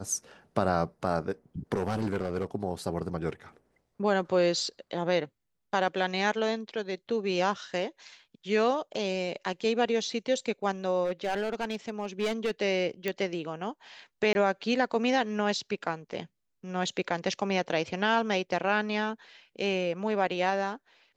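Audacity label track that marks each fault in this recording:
1.740000	2.450000	clipped -25 dBFS
11.040000	12.510000	clipped -24.5 dBFS
13.080000	13.080000	pop -16 dBFS
14.330000	14.350000	dropout 20 ms

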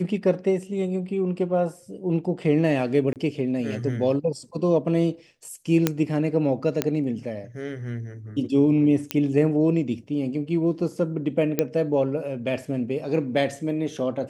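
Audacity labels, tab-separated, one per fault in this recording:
3.130000	3.160000	dropout 28 ms
5.870000	5.870000	pop -5 dBFS
6.820000	6.820000	pop -7 dBFS
9.110000	9.110000	pop -7 dBFS
11.590000	11.590000	pop -7 dBFS

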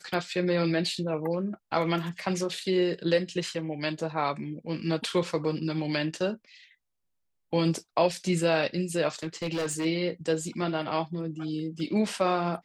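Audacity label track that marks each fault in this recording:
9.230000	9.860000	clipped -26 dBFS

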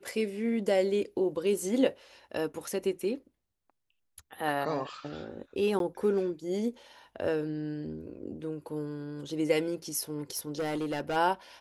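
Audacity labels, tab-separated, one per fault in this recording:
5.790000	5.800000	dropout 12 ms
10.300000	11.170000	clipped -28 dBFS

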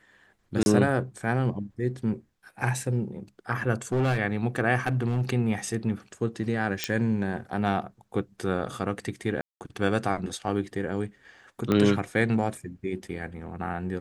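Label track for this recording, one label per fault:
0.630000	0.660000	dropout 31 ms
3.920000	4.180000	clipped -21 dBFS
4.870000	5.300000	clipped -20 dBFS
6.840000	6.840000	pop -9 dBFS
9.410000	9.610000	dropout 198 ms
11.720000	11.720000	pop -12 dBFS

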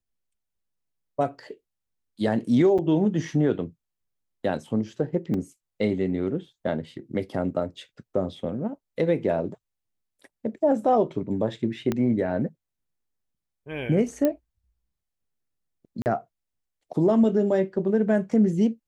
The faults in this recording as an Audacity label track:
2.780000	2.790000	dropout 6.2 ms
5.340000	5.340000	dropout 2.6 ms
11.920000	11.920000	pop -13 dBFS
14.250000	14.250000	pop -11 dBFS
16.020000	16.060000	dropout 39 ms

